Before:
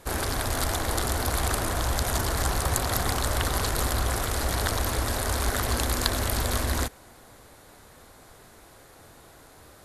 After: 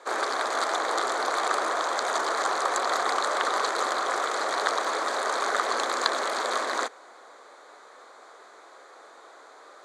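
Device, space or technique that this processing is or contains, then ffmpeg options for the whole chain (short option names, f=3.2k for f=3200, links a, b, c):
phone speaker on a table: -af "highpass=f=400:w=0.5412,highpass=f=400:w=1.3066,equalizer=f=1.2k:t=q:w=4:g=6,equalizer=f=2.8k:t=q:w=4:g=-10,equalizer=f=5.3k:t=q:w=4:g=-9,lowpass=f=6.6k:w=0.5412,lowpass=f=6.6k:w=1.3066,volume=3.5dB"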